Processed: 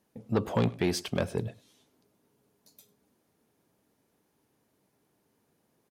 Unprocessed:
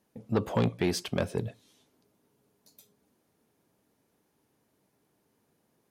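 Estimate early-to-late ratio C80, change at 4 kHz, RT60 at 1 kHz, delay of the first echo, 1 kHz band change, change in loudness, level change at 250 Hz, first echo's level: no reverb audible, 0.0 dB, no reverb audible, 101 ms, 0.0 dB, 0.0 dB, 0.0 dB, −21.5 dB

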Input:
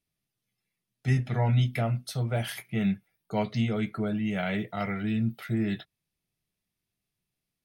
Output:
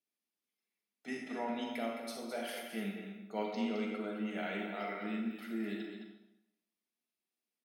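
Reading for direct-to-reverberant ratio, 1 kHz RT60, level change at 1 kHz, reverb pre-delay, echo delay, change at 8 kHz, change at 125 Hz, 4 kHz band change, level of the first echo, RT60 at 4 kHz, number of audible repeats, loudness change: −0.5 dB, 0.85 s, −5.5 dB, 35 ms, 214 ms, −7.0 dB, below −25 dB, −6.5 dB, −7.5 dB, 0.75 s, 1, −10.0 dB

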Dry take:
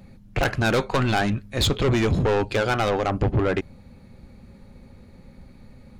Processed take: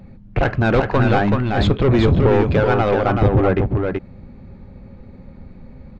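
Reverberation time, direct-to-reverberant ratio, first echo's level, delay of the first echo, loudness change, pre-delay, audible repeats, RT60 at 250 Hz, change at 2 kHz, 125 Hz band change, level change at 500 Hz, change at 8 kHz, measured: no reverb audible, no reverb audible, −4.0 dB, 379 ms, +6.0 dB, no reverb audible, 1, no reverb audible, +2.5 dB, +7.5 dB, +6.5 dB, below −10 dB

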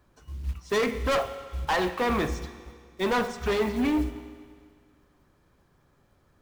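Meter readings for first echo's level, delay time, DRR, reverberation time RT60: no echo audible, no echo audible, 10.5 dB, 1.9 s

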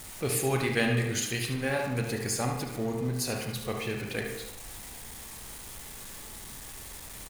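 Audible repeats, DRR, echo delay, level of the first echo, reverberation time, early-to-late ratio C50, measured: 1, 1.0 dB, 73 ms, −8.0 dB, 0.90 s, 3.0 dB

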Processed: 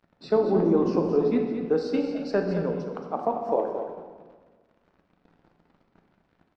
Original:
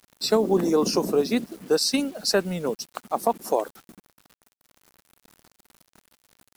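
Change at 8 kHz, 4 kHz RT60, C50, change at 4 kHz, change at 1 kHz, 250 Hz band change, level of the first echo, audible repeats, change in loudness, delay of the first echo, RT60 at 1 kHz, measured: below −25 dB, 1.1 s, 3.5 dB, −18.5 dB, −2.5 dB, +0.5 dB, −8.5 dB, 1, −1.5 dB, 223 ms, 1.4 s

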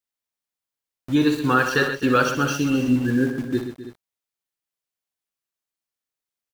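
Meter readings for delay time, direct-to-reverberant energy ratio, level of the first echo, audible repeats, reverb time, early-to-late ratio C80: 63 ms, no reverb audible, −9.0 dB, 4, no reverb audible, no reverb audible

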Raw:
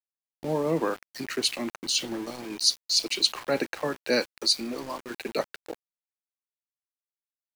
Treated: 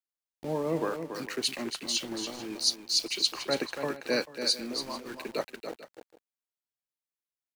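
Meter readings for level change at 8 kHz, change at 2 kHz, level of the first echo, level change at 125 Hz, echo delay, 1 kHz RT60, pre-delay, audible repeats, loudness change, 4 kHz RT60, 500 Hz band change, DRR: −3.5 dB, −3.5 dB, −8.0 dB, −3.5 dB, 283 ms, no reverb audible, no reverb audible, 2, −3.5 dB, no reverb audible, −3.5 dB, no reverb audible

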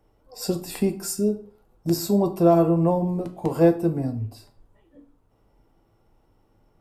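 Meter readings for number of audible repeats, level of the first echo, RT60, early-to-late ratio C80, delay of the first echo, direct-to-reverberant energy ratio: no echo audible, no echo audible, 0.45 s, 18.5 dB, no echo audible, 6.0 dB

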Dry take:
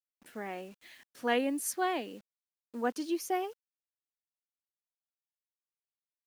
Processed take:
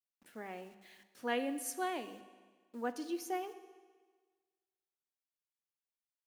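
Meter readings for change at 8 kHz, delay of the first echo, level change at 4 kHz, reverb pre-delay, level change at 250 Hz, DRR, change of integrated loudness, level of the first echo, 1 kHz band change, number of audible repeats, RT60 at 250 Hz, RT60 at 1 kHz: −5.5 dB, no echo audible, −5.5 dB, 15 ms, −5.5 dB, 11.0 dB, −6.0 dB, no echo audible, −5.5 dB, no echo audible, 1.5 s, 1.5 s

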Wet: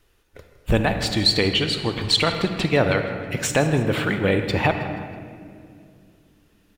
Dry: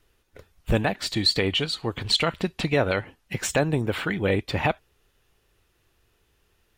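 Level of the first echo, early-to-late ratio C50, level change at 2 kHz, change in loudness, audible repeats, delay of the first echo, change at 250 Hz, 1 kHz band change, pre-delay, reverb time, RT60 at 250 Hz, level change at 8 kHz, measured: −16.0 dB, 6.5 dB, +4.0 dB, +4.0 dB, 4, 160 ms, +4.5 dB, +4.0 dB, 38 ms, 2.3 s, 3.7 s, +3.5 dB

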